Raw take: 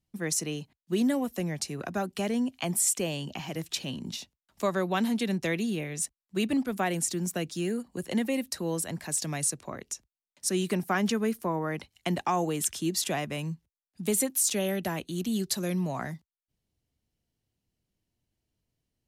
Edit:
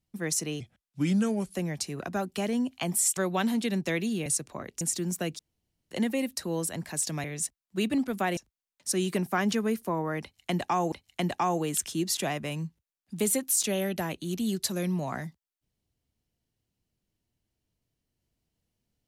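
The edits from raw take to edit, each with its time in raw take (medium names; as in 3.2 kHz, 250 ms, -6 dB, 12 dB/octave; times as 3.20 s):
0.60–1.36 s: speed 80%
2.98–4.74 s: delete
5.83–6.96 s: swap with 9.39–9.94 s
7.54–8.06 s: room tone
11.79–12.49 s: loop, 2 plays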